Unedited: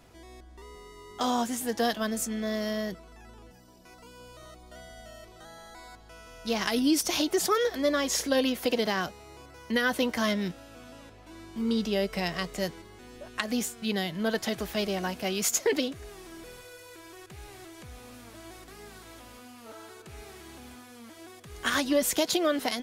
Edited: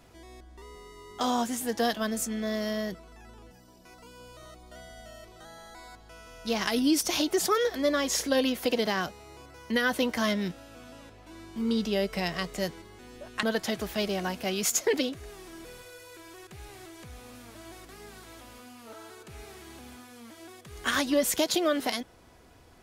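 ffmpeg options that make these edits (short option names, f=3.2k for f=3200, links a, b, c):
-filter_complex "[0:a]asplit=2[a][b];[a]atrim=end=13.432[c];[b]atrim=start=14.218[d];[c][d]acrossfade=d=0.004:c1=hsin:c2=hsin"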